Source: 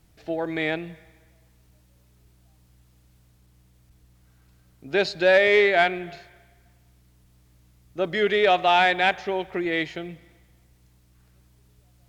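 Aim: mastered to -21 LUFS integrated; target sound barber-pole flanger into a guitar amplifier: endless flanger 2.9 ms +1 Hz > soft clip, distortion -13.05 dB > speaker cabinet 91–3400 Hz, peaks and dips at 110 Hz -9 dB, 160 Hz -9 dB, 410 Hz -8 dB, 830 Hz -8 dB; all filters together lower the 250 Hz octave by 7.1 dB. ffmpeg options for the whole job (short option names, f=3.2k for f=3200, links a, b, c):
-filter_complex "[0:a]equalizer=f=250:t=o:g=-6,asplit=2[a][b];[b]adelay=2.9,afreqshift=1[c];[a][c]amix=inputs=2:normalize=1,asoftclip=threshold=-21dB,highpass=91,equalizer=f=110:t=q:w=4:g=-9,equalizer=f=160:t=q:w=4:g=-9,equalizer=f=410:t=q:w=4:g=-8,equalizer=f=830:t=q:w=4:g=-8,lowpass=f=3.4k:w=0.5412,lowpass=f=3.4k:w=1.3066,volume=10dB"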